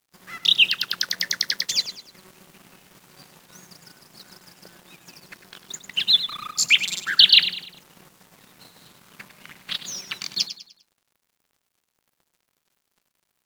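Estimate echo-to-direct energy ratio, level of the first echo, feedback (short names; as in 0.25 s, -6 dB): -11.5 dB, -12.0 dB, 38%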